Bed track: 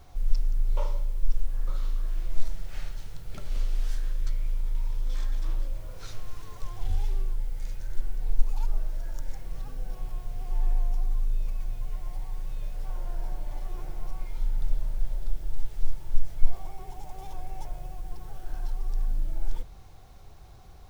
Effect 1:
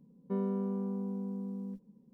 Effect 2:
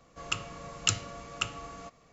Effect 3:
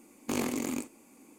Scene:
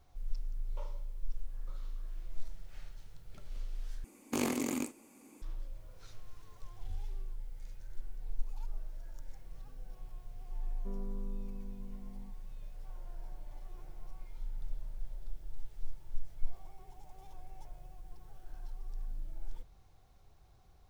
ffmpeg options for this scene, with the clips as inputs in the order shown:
-filter_complex "[0:a]volume=0.224,asplit=2[s0][s1];[s0]atrim=end=4.044[s2];[3:a]atrim=end=1.38,asetpts=PTS-STARTPTS,volume=0.841[s3];[s1]atrim=start=5.416[s4];[1:a]atrim=end=2.13,asetpts=PTS-STARTPTS,volume=0.211,afade=t=in:d=0.004:c=hsin,afade=t=out:st=2.126:d=0.004:c=hsin,adelay=10550[s5];[s2][s3]acrossfade=d=0.004:c1=hsin:c2=hsin[s6];[s6][s4]acrossfade=d=0.004:c1=hsin:c2=hsin[s7];[s7][s5]amix=inputs=2:normalize=0"

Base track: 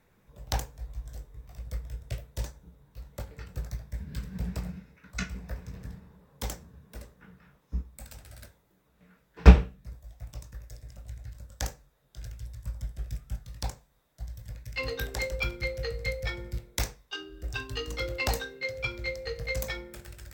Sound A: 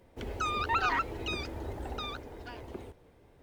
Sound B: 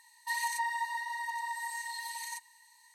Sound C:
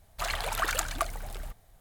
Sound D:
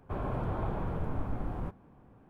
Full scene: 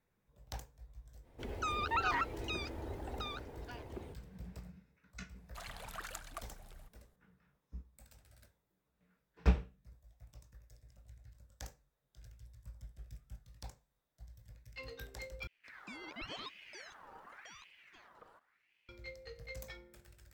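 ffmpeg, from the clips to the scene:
-filter_complex "[1:a]asplit=2[s0][s1];[0:a]volume=0.178[s2];[s1]aeval=exprs='val(0)*sin(2*PI*1700*n/s+1700*0.5/0.9*sin(2*PI*0.9*n/s))':c=same[s3];[s2]asplit=2[s4][s5];[s4]atrim=end=15.474[s6];[s3]atrim=end=3.42,asetpts=PTS-STARTPTS,volume=0.2[s7];[s5]atrim=start=18.886[s8];[s0]atrim=end=3.42,asetpts=PTS-STARTPTS,volume=0.596,afade=t=in:d=0.05,afade=t=out:st=3.37:d=0.05,adelay=1220[s9];[3:a]atrim=end=1.8,asetpts=PTS-STARTPTS,volume=0.15,afade=t=in:d=0.004:c=hsin,afade=t=out:st=1.796:d=0.004:c=hsin,adelay=5360[s10];[s6][s7]acrossfade=d=0.004:c1=hsin:c2=hsin[s11];[s11][s8]acrossfade=d=0.004:c1=hsin:c2=hsin[s12];[s12][s9][s10]amix=inputs=3:normalize=0"

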